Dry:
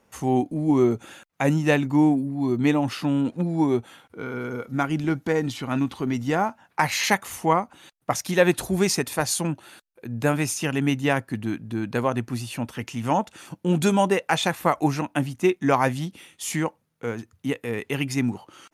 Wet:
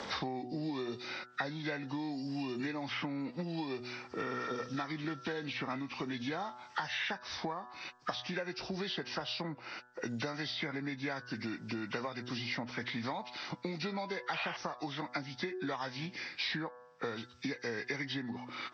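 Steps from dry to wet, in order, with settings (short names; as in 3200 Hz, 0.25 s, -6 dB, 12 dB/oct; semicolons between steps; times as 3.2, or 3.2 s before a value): nonlinear frequency compression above 1200 Hz 1.5:1; LPF 5100 Hz 12 dB/oct; de-hum 123.3 Hz, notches 14; compressor, threshold -28 dBFS, peak gain reduction 14.5 dB; tilt +2.5 dB/oct; painted sound noise, 14.33–14.57, 560–3300 Hz -35 dBFS; three-band squash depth 100%; gain -4.5 dB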